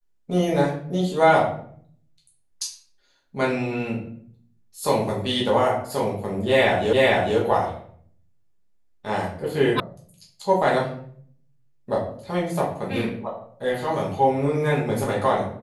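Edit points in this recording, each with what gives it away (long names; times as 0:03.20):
0:06.93: the same again, the last 0.45 s
0:09.80: cut off before it has died away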